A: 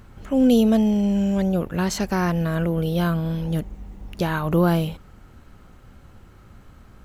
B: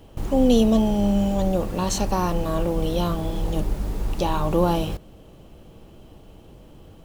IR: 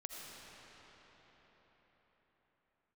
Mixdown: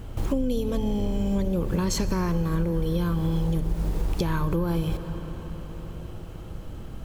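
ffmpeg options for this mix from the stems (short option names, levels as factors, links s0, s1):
-filter_complex "[0:a]bass=f=250:g=9,treble=f=4000:g=4,acompressor=threshold=0.158:ratio=6,volume=0.75,asplit=2[s0][s1];[s1]volume=0.501[s2];[1:a]acrossover=split=210[s3][s4];[s4]acompressor=threshold=0.0251:ratio=6[s5];[s3][s5]amix=inputs=2:normalize=0,volume=1.06,asplit=2[s6][s7];[s7]volume=0.376[s8];[2:a]atrim=start_sample=2205[s9];[s2][s8]amix=inputs=2:normalize=0[s10];[s10][s9]afir=irnorm=-1:irlink=0[s11];[s0][s6][s11]amix=inputs=3:normalize=0,acompressor=threshold=0.0891:ratio=6"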